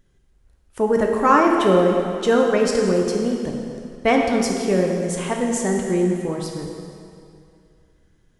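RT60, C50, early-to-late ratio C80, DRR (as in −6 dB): 2.5 s, 2.0 dB, 3.5 dB, 0.0 dB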